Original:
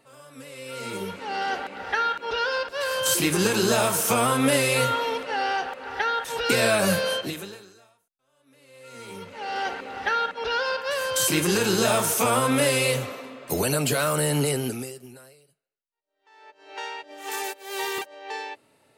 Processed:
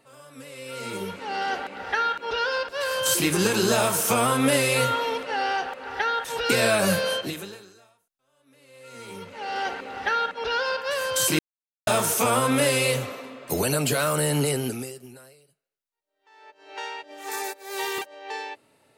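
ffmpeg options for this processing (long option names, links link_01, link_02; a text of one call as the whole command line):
ffmpeg -i in.wav -filter_complex "[0:a]asettb=1/sr,asplit=3[link_01][link_02][link_03];[link_01]atrim=end=17.244[link_04];[link_02]atrim=start=17.24:end=17.78,asetpts=PTS-STARTPTS,afade=type=in:duration=0.004:curve=qsin,afade=type=out:start_time=0.536:duration=0.004:curve=qsin,equalizer=frequency=3000:width=7.5:gain=-14[link_05];[link_03]atrim=start=17.776[link_06];[link_04][link_05]acrossfade=duration=0.004:curve1=hsin:curve2=qsin[link_07];[link_07][link_06]acrossfade=duration=0.004:curve1=qsin:curve2=hsin,asplit=3[link_08][link_09][link_10];[link_08]atrim=end=11.39,asetpts=PTS-STARTPTS,afade=type=out:start_time=11.386:duration=0.004:curve=hsin[link_11];[link_09]atrim=start=11.39:end=11.87,asetpts=PTS-STARTPTS,volume=0[link_12];[link_10]atrim=start=11.87,asetpts=PTS-STARTPTS,afade=type=in:duration=0.004:curve=hsin[link_13];[link_11][link_12][link_13]concat=n=3:v=0:a=1" out.wav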